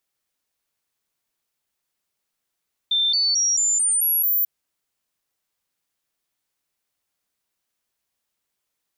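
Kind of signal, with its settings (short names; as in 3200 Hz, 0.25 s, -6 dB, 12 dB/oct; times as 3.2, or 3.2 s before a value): stepped sine 3570 Hz up, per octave 3, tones 7, 0.22 s, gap 0.00 s -17 dBFS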